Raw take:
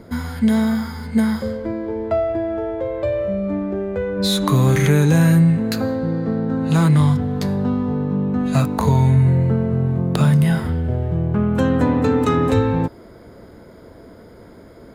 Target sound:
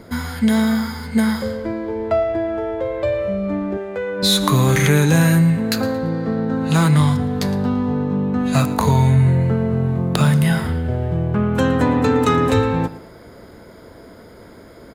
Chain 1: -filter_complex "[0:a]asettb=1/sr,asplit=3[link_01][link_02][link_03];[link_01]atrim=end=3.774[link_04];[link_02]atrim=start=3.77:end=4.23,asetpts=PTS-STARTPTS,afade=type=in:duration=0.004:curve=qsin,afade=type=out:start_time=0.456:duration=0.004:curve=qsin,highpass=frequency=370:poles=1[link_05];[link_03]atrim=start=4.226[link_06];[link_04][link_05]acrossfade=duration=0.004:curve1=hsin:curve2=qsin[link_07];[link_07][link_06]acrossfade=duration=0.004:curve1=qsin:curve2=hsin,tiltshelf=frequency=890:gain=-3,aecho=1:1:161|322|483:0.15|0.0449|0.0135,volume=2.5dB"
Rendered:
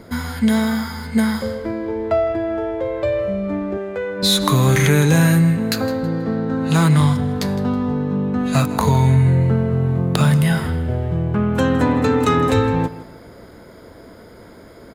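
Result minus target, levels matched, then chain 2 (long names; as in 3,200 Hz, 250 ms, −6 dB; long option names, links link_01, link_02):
echo 48 ms late
-filter_complex "[0:a]asettb=1/sr,asplit=3[link_01][link_02][link_03];[link_01]atrim=end=3.774[link_04];[link_02]atrim=start=3.77:end=4.23,asetpts=PTS-STARTPTS,afade=type=in:duration=0.004:curve=qsin,afade=type=out:start_time=0.456:duration=0.004:curve=qsin,highpass=frequency=370:poles=1[link_05];[link_03]atrim=start=4.226[link_06];[link_04][link_05]acrossfade=duration=0.004:curve1=hsin:curve2=qsin[link_07];[link_07][link_06]acrossfade=duration=0.004:curve1=qsin:curve2=hsin,tiltshelf=frequency=890:gain=-3,aecho=1:1:113|226|339:0.15|0.0449|0.0135,volume=2.5dB"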